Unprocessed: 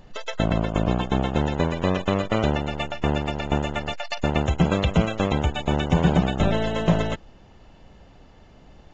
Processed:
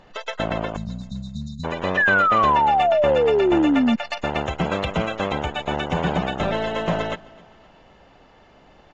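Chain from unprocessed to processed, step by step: overdrive pedal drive 15 dB, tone 2300 Hz, clips at -7 dBFS; spectral delete 0.76–1.64, 240–3600 Hz; on a send: feedback echo 0.258 s, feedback 45%, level -23 dB; on the sum: painted sound fall, 1.97–3.96, 220–1800 Hz -14 dBFS; gain -3.5 dB

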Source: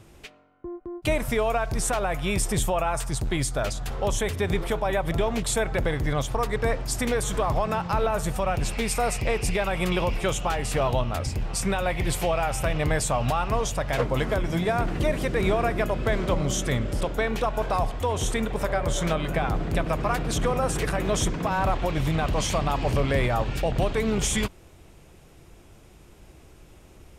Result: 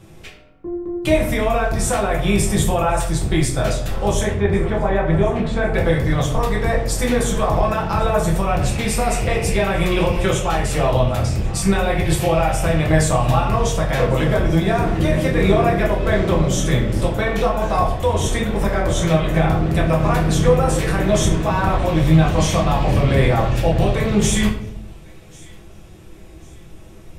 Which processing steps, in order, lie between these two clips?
4.22–5.74 LPF 2200 Hz 12 dB/oct; thin delay 1.096 s, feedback 37%, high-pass 1700 Hz, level -23 dB; reverb RT60 0.70 s, pre-delay 5 ms, DRR -3.5 dB; gain +1 dB

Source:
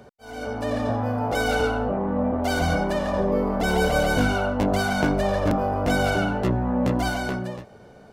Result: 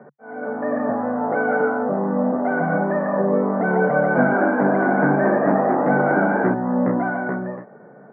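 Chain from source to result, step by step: Chebyshev band-pass 140–1900 Hz, order 5; 3.92–6.54 frequency-shifting echo 0.228 s, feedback 37%, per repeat +69 Hz, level -3.5 dB; gain +4 dB

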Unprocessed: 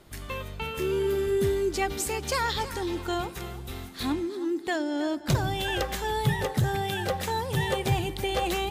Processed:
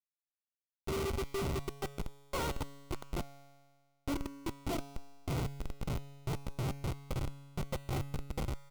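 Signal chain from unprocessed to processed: notches 50/100/150/200/250/300/350/400/450 Hz; vocal rider within 4 dB 2 s; flange 0.27 Hz, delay 6.8 ms, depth 5.8 ms, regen -88%; gate -30 dBFS, range -15 dB; feedback echo 0.568 s, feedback 41%, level -8 dB; on a send at -9.5 dB: reverb RT60 2.5 s, pre-delay 95 ms; on the sum: Schmitt trigger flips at -32 dBFS; Butterworth band-stop 1700 Hz, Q 5.2; resonator 140 Hz, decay 1.7 s, mix 70%; gain +14.5 dB

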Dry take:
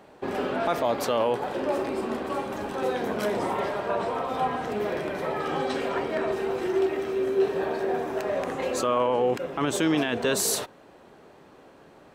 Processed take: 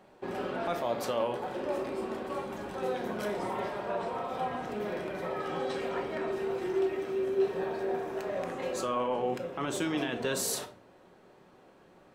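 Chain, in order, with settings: shoebox room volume 410 m³, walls furnished, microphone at 1 m; gain -7.5 dB

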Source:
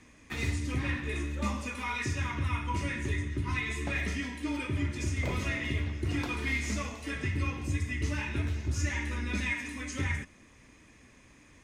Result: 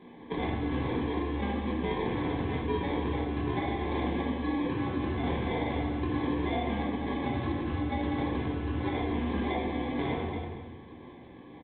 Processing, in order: HPF 230 Hz 6 dB/oct; air absorption 82 m; notch 2300 Hz; feedback echo 0.232 s, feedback 24%, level -10 dB; sample-rate reducer 1400 Hz, jitter 0%; reverb RT60 0.75 s, pre-delay 5 ms, DRR -2.5 dB; compressor 2:1, threshold -37 dBFS, peak gain reduction 7 dB; notch comb 620 Hz; gain +7 dB; µ-law 64 kbps 8000 Hz

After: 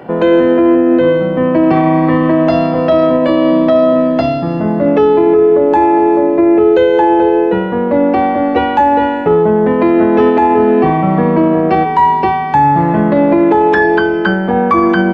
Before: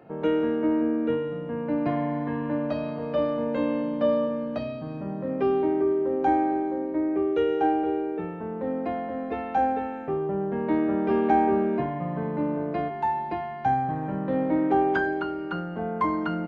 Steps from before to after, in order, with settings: speed mistake 44.1 kHz file played as 48 kHz; maximiser +19.5 dB; gain -1 dB

